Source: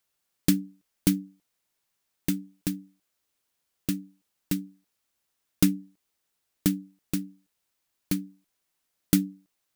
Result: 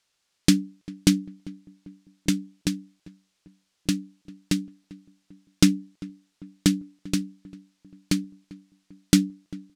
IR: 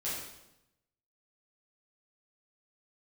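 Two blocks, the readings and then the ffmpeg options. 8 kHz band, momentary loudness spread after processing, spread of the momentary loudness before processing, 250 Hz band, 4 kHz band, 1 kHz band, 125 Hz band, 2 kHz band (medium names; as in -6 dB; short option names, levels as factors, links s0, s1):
+4.5 dB, 20 LU, 13 LU, +4.0 dB, +9.0 dB, +5.0 dB, +4.0 dB, +7.0 dB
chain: -filter_complex "[0:a]lowpass=5400,highshelf=f=3100:g=10,asplit=2[s0][s1];[s1]adelay=396,lowpass=f=1300:p=1,volume=0.106,asplit=2[s2][s3];[s3]adelay=396,lowpass=f=1300:p=1,volume=0.49,asplit=2[s4][s5];[s5]adelay=396,lowpass=f=1300:p=1,volume=0.49,asplit=2[s6][s7];[s7]adelay=396,lowpass=f=1300:p=1,volume=0.49[s8];[s0][s2][s4][s6][s8]amix=inputs=5:normalize=0,volume=1.58"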